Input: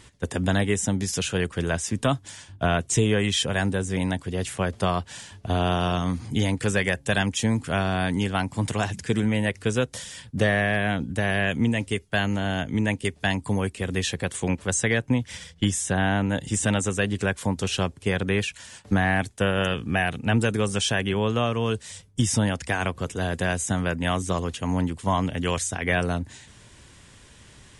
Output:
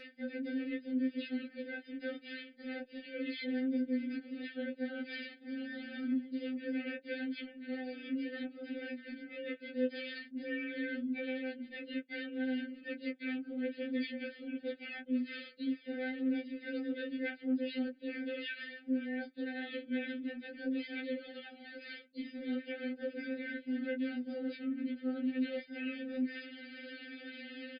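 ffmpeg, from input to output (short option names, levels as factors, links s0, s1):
-filter_complex "[0:a]afftfilt=real='re*between(b*sr/4096,160,3800)':imag='im*between(b*sr/4096,160,3800)':win_size=4096:overlap=0.75,asplit=3[s0][s1][s2];[s1]asetrate=29433,aresample=44100,atempo=1.49831,volume=0.708[s3];[s2]asetrate=58866,aresample=44100,atempo=0.749154,volume=0.794[s4];[s0][s3][s4]amix=inputs=3:normalize=0,acrossover=split=350|930[s5][s6][s7];[s7]acompressor=mode=upward:threshold=0.00562:ratio=2.5[s8];[s5][s6][s8]amix=inputs=3:normalize=0,aecho=1:1:4:0.55,alimiter=limit=0.126:level=0:latency=1:release=324,flanger=delay=19:depth=3.5:speed=0.79,areverse,acompressor=threshold=0.00891:ratio=16,areverse,asuperstop=centerf=1000:order=20:qfactor=1.6,afftfilt=real='re*3.46*eq(mod(b,12),0)':imag='im*3.46*eq(mod(b,12),0)':win_size=2048:overlap=0.75,volume=2.11"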